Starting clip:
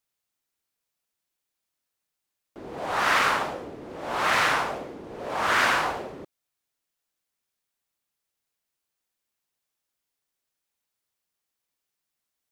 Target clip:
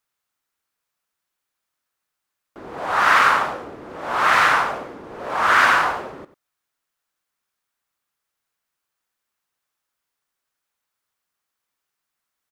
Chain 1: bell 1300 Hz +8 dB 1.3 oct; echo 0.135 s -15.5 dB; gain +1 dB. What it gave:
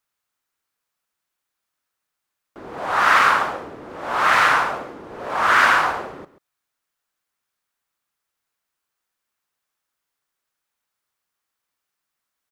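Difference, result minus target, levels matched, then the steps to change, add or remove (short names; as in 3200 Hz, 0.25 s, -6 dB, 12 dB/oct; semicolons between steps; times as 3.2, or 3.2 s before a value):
echo 41 ms late
change: echo 94 ms -15.5 dB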